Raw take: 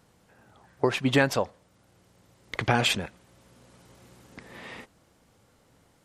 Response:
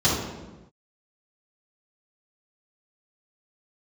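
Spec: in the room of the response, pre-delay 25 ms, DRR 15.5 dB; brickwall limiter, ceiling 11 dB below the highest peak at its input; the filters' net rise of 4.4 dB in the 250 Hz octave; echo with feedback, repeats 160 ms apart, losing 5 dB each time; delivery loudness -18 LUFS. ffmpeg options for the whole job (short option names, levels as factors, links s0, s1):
-filter_complex "[0:a]equalizer=f=250:t=o:g=5,alimiter=limit=0.168:level=0:latency=1,aecho=1:1:160|320|480|640|800|960|1120:0.562|0.315|0.176|0.0988|0.0553|0.031|0.0173,asplit=2[s0][s1];[1:a]atrim=start_sample=2205,adelay=25[s2];[s1][s2]afir=irnorm=-1:irlink=0,volume=0.0251[s3];[s0][s3]amix=inputs=2:normalize=0,volume=3.55"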